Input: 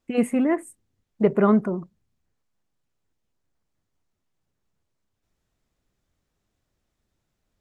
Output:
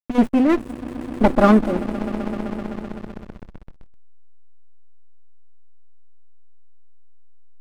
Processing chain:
lower of the sound and its delayed copy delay 3.5 ms
echo that builds up and dies away 128 ms, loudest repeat 5, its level −15.5 dB
slack as between gear wheels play −26 dBFS
level +6 dB

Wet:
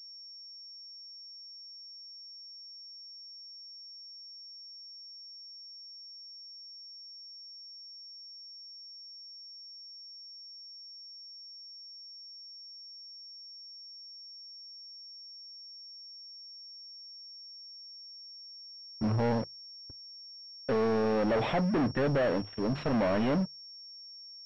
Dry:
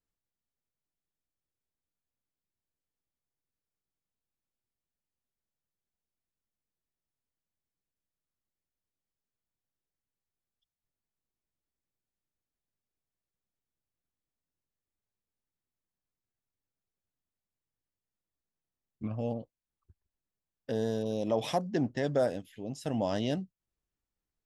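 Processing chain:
leveller curve on the samples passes 3
mains-hum notches 50/100/150 Hz
leveller curve on the samples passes 3
switching amplifier with a slow clock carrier 5,500 Hz
level −8 dB

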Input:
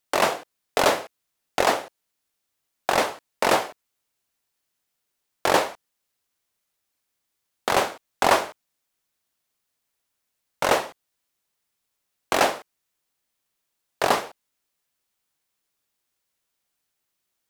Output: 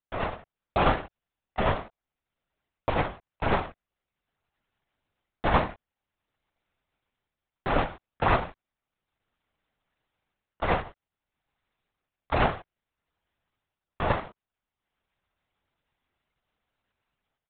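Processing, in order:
sub-harmonics by changed cycles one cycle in 2, muted
high-shelf EQ 2,900 Hz −10.5 dB
automatic gain control gain up to 16 dB
linear-prediction vocoder at 8 kHz whisper
level −6 dB

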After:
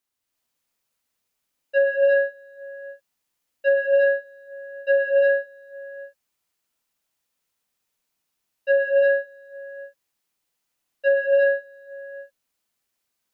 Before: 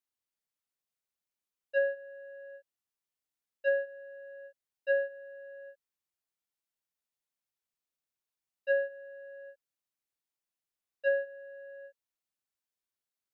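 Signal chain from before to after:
reverb whose tail is shaped and stops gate 400 ms rising, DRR −4 dB
level +8 dB

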